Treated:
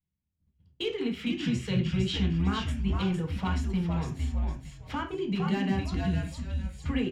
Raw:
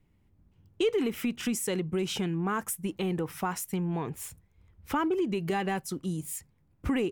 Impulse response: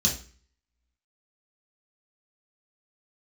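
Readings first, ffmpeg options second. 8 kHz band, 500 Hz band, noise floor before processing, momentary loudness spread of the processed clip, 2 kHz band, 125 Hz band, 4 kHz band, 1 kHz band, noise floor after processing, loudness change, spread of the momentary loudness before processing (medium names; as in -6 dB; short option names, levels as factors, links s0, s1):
-12.5 dB, -4.5 dB, -67 dBFS, 7 LU, -0.5 dB, +7.0 dB, +3.0 dB, -3.0 dB, -82 dBFS, +1.0 dB, 8 LU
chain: -filter_complex "[0:a]aemphasis=mode=reproduction:type=50fm,agate=range=0.0891:threshold=0.00126:ratio=16:detection=peak,equalizer=f=3200:w=0.53:g=10.5,acrossover=split=7800[s0][s1];[s1]acompressor=threshold=0.00141:ratio=6[s2];[s0][s2]amix=inputs=2:normalize=0,asoftclip=type=hard:threshold=0.133,asplit=5[s3][s4][s5][s6][s7];[s4]adelay=457,afreqshift=-110,volume=0.631[s8];[s5]adelay=914,afreqshift=-220,volume=0.209[s9];[s6]adelay=1371,afreqshift=-330,volume=0.0684[s10];[s7]adelay=1828,afreqshift=-440,volume=0.0226[s11];[s3][s8][s9][s10][s11]amix=inputs=5:normalize=0,asplit=2[s12][s13];[1:a]atrim=start_sample=2205,afade=t=out:st=0.18:d=0.01,atrim=end_sample=8379,highshelf=f=4000:g=-8[s14];[s13][s14]afir=irnorm=-1:irlink=0,volume=0.316[s15];[s12][s15]amix=inputs=2:normalize=0,volume=0.422"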